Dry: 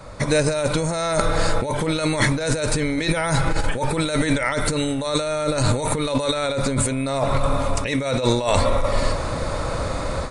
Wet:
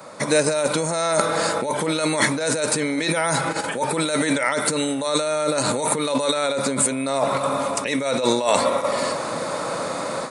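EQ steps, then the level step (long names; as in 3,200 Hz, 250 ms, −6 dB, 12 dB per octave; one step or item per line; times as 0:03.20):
high-pass filter 170 Hz 24 dB per octave
parametric band 900 Hz +3 dB 1.9 octaves
high-shelf EQ 8,800 Hz +11.5 dB
−1.0 dB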